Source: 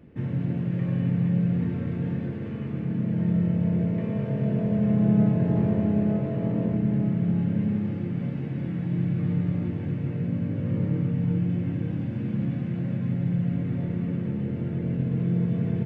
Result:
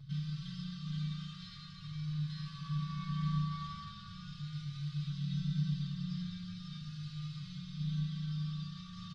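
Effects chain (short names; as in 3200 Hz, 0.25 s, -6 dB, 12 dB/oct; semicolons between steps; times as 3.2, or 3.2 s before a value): median filter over 9 samples; band shelf 1000 Hz -14.5 dB; in parallel at -1.5 dB: limiter -22 dBFS, peak gain reduction 10.5 dB; on the sum: air absorption 290 m; on a send at -2 dB: reverb, pre-delay 3 ms; on the sum: speed mistake 45 rpm record played at 78 rpm; brick-wall FIR band-stop 170–1100 Hz; endless flanger 4.2 ms +0.4 Hz; gain +3.5 dB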